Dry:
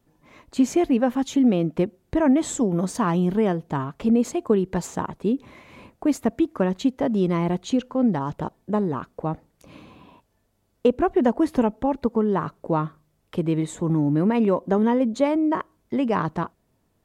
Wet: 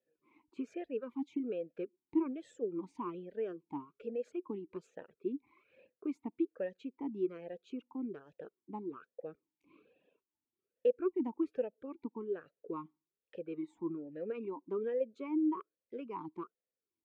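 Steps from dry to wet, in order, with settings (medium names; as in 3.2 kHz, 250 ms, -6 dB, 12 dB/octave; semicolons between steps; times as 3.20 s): reverb removal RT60 0.8 s; talking filter e-u 1.2 Hz; trim -6 dB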